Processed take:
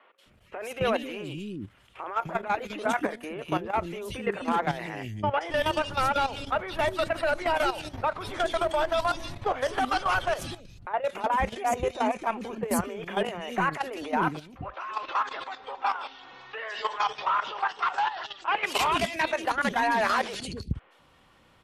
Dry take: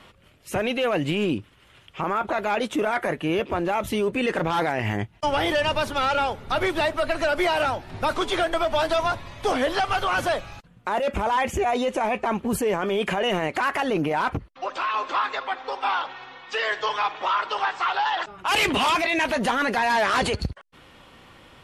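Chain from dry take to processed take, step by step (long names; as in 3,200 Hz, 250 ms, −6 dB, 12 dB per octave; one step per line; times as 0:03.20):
three-band delay without the direct sound mids, highs, lows 180/260 ms, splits 360/2,700 Hz
output level in coarse steps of 12 dB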